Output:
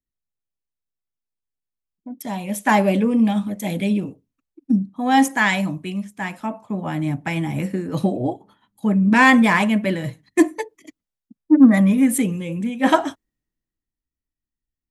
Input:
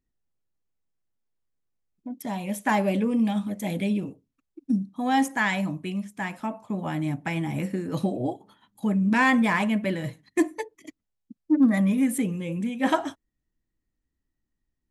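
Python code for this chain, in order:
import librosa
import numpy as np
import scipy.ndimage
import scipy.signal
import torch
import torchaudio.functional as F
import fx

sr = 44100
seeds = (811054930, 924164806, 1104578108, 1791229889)

y = fx.band_widen(x, sr, depth_pct=40)
y = y * 10.0 ** (6.0 / 20.0)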